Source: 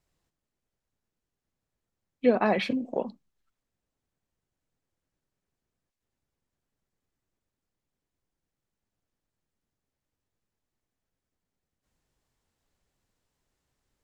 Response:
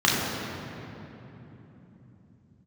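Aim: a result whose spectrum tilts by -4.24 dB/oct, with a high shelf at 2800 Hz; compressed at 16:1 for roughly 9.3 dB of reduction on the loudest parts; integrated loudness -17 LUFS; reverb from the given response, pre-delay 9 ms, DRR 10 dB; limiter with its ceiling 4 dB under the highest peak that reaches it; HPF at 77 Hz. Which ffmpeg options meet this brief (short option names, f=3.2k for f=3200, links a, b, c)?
-filter_complex "[0:a]highpass=77,highshelf=f=2.8k:g=-4.5,acompressor=threshold=-24dB:ratio=16,alimiter=limit=-20dB:level=0:latency=1,asplit=2[a][b];[1:a]atrim=start_sample=2205,adelay=9[c];[b][c]afir=irnorm=-1:irlink=0,volume=-29dB[d];[a][d]amix=inputs=2:normalize=0,volume=17dB"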